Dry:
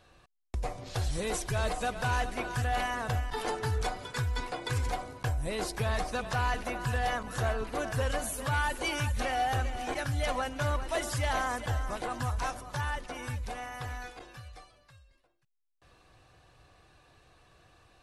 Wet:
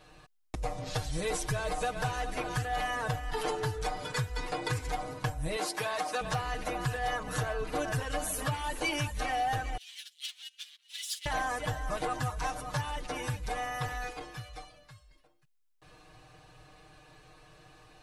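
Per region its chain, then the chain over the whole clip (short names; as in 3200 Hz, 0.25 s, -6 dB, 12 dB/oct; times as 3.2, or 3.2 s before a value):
5.56–6.21 HPF 320 Hz + bell 450 Hz -5.5 dB 0.23 oct
9.77–11.26 sample leveller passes 3 + ladder high-pass 2900 Hz, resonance 55% + upward expander 2.5:1, over -52 dBFS
whole clip: compressor, threshold -34 dBFS; comb 6.5 ms, depth 99%; gain +2 dB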